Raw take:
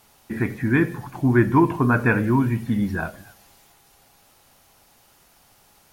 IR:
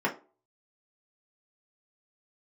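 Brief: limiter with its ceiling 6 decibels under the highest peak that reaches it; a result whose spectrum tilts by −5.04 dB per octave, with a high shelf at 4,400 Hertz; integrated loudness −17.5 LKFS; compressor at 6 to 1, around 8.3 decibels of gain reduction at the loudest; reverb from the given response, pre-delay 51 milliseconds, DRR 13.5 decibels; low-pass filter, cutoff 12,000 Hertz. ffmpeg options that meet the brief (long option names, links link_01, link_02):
-filter_complex "[0:a]lowpass=12000,highshelf=frequency=4400:gain=9,acompressor=threshold=-20dB:ratio=6,alimiter=limit=-17dB:level=0:latency=1,asplit=2[link_01][link_02];[1:a]atrim=start_sample=2205,adelay=51[link_03];[link_02][link_03]afir=irnorm=-1:irlink=0,volume=-24.5dB[link_04];[link_01][link_04]amix=inputs=2:normalize=0,volume=10dB"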